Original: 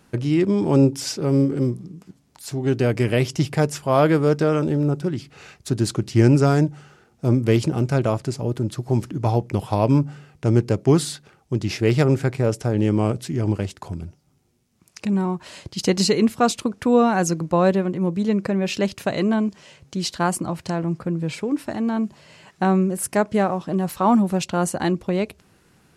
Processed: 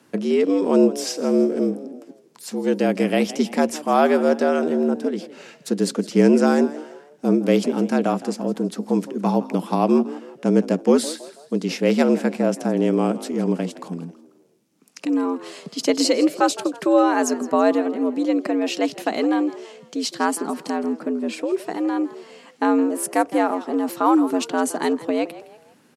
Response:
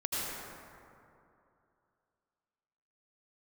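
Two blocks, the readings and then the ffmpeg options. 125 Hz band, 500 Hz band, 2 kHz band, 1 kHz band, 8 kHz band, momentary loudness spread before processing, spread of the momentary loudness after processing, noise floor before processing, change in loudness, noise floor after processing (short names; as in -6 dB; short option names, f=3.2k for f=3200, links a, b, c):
-11.5 dB, +2.0 dB, +1.0 dB, +2.0 dB, 0.0 dB, 10 LU, 11 LU, -60 dBFS, +0.5 dB, -54 dBFS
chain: -filter_complex "[0:a]afreqshift=85,asplit=4[a][b][c][d];[b]adelay=163,afreqshift=68,volume=-17dB[e];[c]adelay=326,afreqshift=136,volume=-24.7dB[f];[d]adelay=489,afreqshift=204,volume=-32.5dB[g];[a][e][f][g]amix=inputs=4:normalize=0"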